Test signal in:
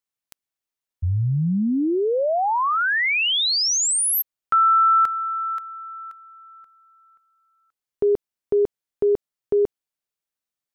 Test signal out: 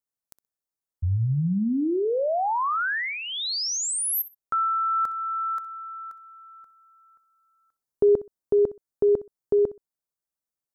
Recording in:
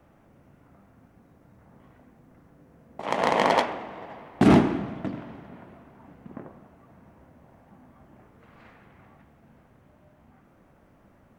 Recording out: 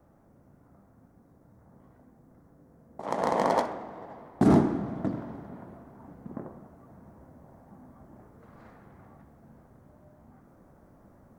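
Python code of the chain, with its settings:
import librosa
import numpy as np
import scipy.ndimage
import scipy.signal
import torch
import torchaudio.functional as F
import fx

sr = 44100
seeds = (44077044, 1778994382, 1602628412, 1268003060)

p1 = fx.peak_eq(x, sr, hz=2700.0, db=-15.0, octaves=1.1)
p2 = fx.rider(p1, sr, range_db=4, speed_s=0.5)
p3 = p2 + fx.echo_feedback(p2, sr, ms=63, feedback_pct=19, wet_db=-16.5, dry=0)
y = F.gain(torch.from_numpy(p3), -2.0).numpy()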